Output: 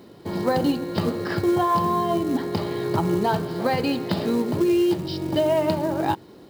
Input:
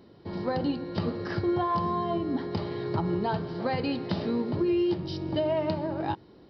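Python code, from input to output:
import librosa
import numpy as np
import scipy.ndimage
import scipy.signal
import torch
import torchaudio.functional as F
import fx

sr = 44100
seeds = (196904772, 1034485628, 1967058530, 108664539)

p1 = fx.rider(x, sr, range_db=4, speed_s=2.0)
p2 = x + (p1 * librosa.db_to_amplitude(1.0))
p3 = fx.quant_companded(p2, sr, bits=6)
y = fx.low_shelf(p3, sr, hz=74.0, db=-11.5)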